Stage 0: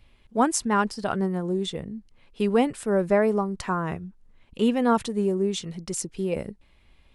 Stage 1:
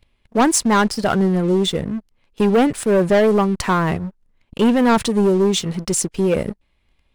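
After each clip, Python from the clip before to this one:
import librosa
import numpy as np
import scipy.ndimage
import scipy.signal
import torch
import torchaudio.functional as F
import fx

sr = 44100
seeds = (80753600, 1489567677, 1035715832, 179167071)

y = fx.leveller(x, sr, passes=3)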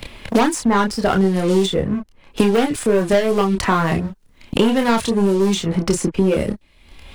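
y = fx.chorus_voices(x, sr, voices=6, hz=0.58, base_ms=28, depth_ms=2.2, mix_pct=40)
y = fx.band_squash(y, sr, depth_pct=100)
y = F.gain(torch.from_numpy(y), 2.0).numpy()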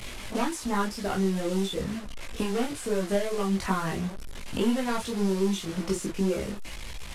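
y = fx.delta_mod(x, sr, bps=64000, step_db=-21.5)
y = fx.chorus_voices(y, sr, voices=6, hz=0.99, base_ms=18, depth_ms=3.0, mix_pct=50)
y = F.gain(torch.from_numpy(y), -9.0).numpy()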